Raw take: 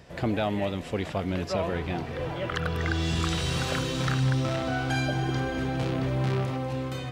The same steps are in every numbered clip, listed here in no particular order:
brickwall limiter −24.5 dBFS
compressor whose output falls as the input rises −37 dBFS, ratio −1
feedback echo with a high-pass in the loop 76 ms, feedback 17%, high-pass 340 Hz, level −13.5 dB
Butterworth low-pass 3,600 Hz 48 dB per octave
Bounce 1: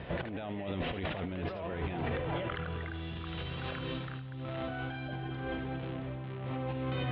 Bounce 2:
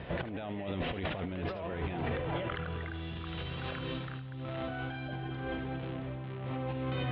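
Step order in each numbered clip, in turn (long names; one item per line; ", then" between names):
compressor whose output falls as the input rises, then feedback echo with a high-pass in the loop, then brickwall limiter, then Butterworth low-pass
compressor whose output falls as the input rises, then Butterworth low-pass, then brickwall limiter, then feedback echo with a high-pass in the loop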